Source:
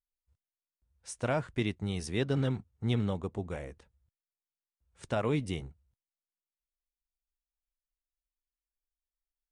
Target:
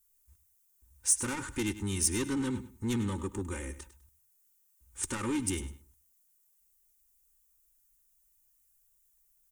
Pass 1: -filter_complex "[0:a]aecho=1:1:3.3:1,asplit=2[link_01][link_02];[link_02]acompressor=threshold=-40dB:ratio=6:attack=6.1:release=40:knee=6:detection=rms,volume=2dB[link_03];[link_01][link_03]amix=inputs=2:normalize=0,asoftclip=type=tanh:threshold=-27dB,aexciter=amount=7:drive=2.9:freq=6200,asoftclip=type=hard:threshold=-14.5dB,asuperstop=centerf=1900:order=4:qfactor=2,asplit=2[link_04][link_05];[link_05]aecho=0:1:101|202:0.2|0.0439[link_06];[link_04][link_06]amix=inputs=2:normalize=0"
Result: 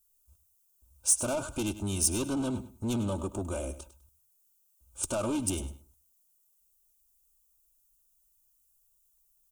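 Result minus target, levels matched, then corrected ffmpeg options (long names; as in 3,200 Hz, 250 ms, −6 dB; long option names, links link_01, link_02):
downward compressor: peak gain reduction −7.5 dB; 2,000 Hz band −5.5 dB
-filter_complex "[0:a]aecho=1:1:3.3:1,asplit=2[link_01][link_02];[link_02]acompressor=threshold=-49dB:ratio=6:attack=6.1:release=40:knee=6:detection=rms,volume=2dB[link_03];[link_01][link_03]amix=inputs=2:normalize=0,asoftclip=type=tanh:threshold=-27dB,aexciter=amount=7:drive=2.9:freq=6200,asoftclip=type=hard:threshold=-14.5dB,asuperstop=centerf=640:order=4:qfactor=2,asplit=2[link_04][link_05];[link_05]aecho=0:1:101|202:0.2|0.0439[link_06];[link_04][link_06]amix=inputs=2:normalize=0"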